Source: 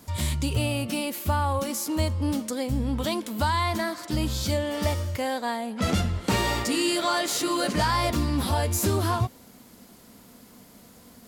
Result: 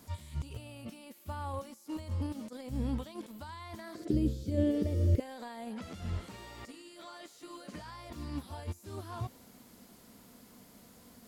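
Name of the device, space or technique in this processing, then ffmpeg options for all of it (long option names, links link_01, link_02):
de-esser from a sidechain: -filter_complex "[0:a]asplit=2[link_01][link_02];[link_02]highpass=5000,apad=whole_len=497173[link_03];[link_01][link_03]sidechaincompress=threshold=-52dB:ratio=16:attack=1.5:release=28,asettb=1/sr,asplit=3[link_04][link_05][link_06];[link_04]atrim=end=3.954[link_07];[link_05]atrim=start=3.95:end=5.2,asetpts=PTS-STARTPTS,afade=type=in:duration=0.004:curve=qsin,afade=type=out:start_time=1.246:duration=0.004:curve=qsin,lowshelf=frequency=620:width_type=q:width=3:gain=13.5[link_08];[link_06]atrim=start=5.196[link_09];[link_07][link_08]acrossfade=duration=0.004:curve1=hsin:curve2=qsin[link_10];[link_10][link_09]acrossfade=duration=0.004:curve1=qsin:curve2=hsin,volume=-5dB"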